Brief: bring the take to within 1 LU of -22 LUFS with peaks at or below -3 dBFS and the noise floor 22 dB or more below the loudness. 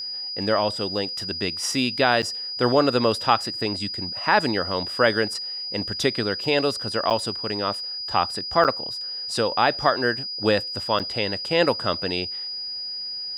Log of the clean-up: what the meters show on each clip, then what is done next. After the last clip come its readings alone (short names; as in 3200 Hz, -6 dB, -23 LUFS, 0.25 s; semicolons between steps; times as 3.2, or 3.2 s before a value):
dropouts 4; longest dropout 7.9 ms; steady tone 4900 Hz; tone level -29 dBFS; loudness -23.5 LUFS; peak -4.0 dBFS; loudness target -22.0 LUFS
-> interpolate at 2.22/7.1/8.64/10.99, 7.9 ms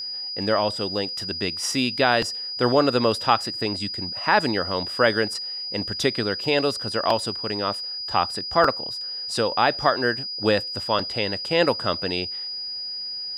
dropouts 0; steady tone 4900 Hz; tone level -29 dBFS
-> notch 4900 Hz, Q 30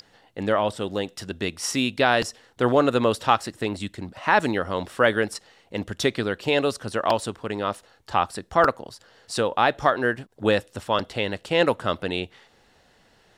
steady tone none; loudness -24.5 LUFS; peak -4.5 dBFS; loudness target -22.0 LUFS
-> gain +2.5 dB; limiter -3 dBFS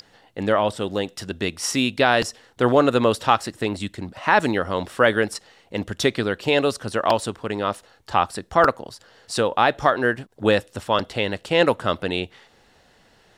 loudness -22.0 LUFS; peak -3.0 dBFS; noise floor -57 dBFS